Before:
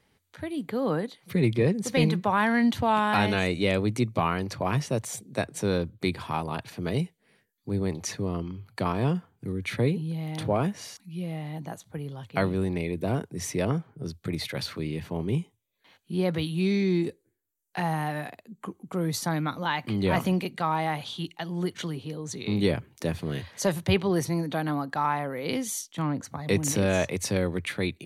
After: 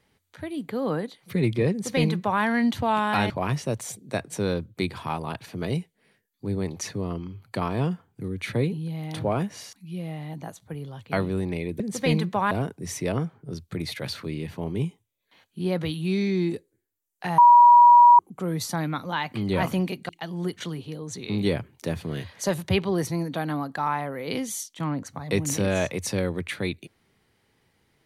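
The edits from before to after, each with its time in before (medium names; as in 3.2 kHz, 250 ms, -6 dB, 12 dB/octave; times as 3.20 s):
1.71–2.42 s: copy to 13.04 s
3.30–4.54 s: delete
17.91–18.72 s: bleep 962 Hz -9 dBFS
20.62–21.27 s: delete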